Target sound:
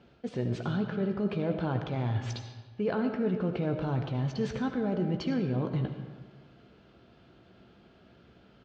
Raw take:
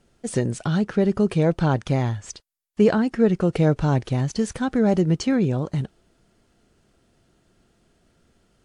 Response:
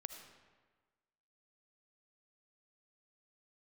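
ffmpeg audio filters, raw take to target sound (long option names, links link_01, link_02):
-filter_complex "[0:a]asplit=2[link_01][link_02];[link_02]adelay=16,volume=-10.5dB[link_03];[link_01][link_03]amix=inputs=2:normalize=0,areverse,acompressor=threshold=-29dB:ratio=6,areverse,lowpass=frequency=4000:width=0.5412,lowpass=frequency=4000:width=1.3066,bandreject=frequency=1900:width=14,asplit=2[link_04][link_05];[link_05]alimiter=level_in=9dB:limit=-24dB:level=0:latency=1:release=24,volume=-9dB,volume=0.5dB[link_06];[link_04][link_06]amix=inputs=2:normalize=0,highpass=72[link_07];[1:a]atrim=start_sample=2205[link_08];[link_07][link_08]afir=irnorm=-1:irlink=0,volume=3dB"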